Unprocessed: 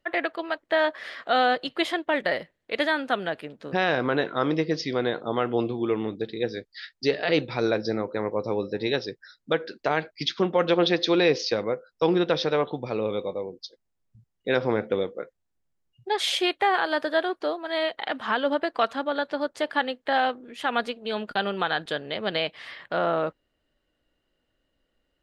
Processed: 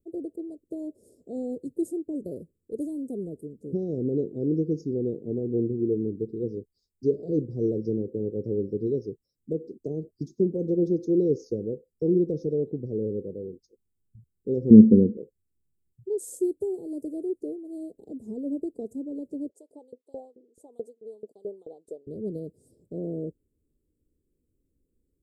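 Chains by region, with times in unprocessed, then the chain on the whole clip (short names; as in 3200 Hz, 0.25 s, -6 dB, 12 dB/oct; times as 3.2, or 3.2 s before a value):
14.7–15.17 LPF 8200 Hz + low shelf 400 Hz +8.5 dB + small resonant body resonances 220/2700 Hz, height 18 dB, ringing for 90 ms
19.49–22.07 LPF 2700 Hz 6 dB/oct + LFO high-pass saw up 4.6 Hz 490–1900 Hz
whole clip: Chebyshev band-stop 430–7700 Hz, order 4; bell 79 Hz +6 dB 0.81 oct; gain +1.5 dB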